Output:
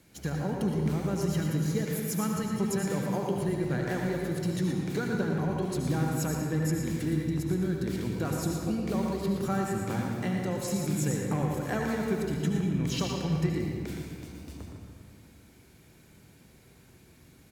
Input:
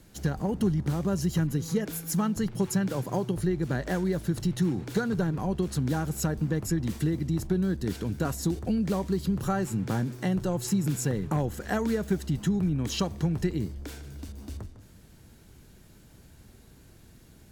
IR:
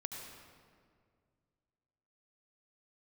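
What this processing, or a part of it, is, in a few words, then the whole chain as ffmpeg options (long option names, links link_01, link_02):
PA in a hall: -filter_complex "[0:a]highpass=frequency=130:poles=1,equalizer=frequency=2300:width_type=o:width=0.24:gain=7,aecho=1:1:116:0.398[link_01];[1:a]atrim=start_sample=2205[link_02];[link_01][link_02]afir=irnorm=-1:irlink=0"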